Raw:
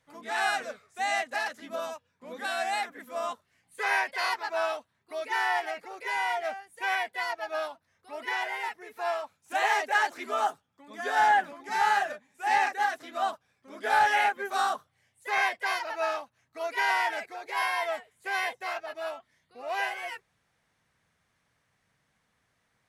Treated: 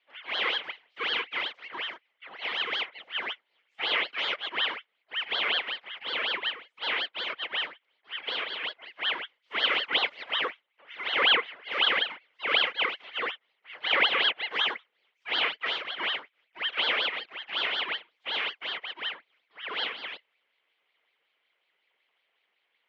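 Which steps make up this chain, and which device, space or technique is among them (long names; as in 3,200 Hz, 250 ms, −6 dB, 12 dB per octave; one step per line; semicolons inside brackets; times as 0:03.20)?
voice changer toy (ring modulator whose carrier an LFO sweeps 1,400 Hz, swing 80%, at 5.4 Hz; loudspeaker in its box 450–3,900 Hz, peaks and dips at 470 Hz +3 dB, 2,100 Hz +9 dB, 3,100 Hz +10 dB)
level −2 dB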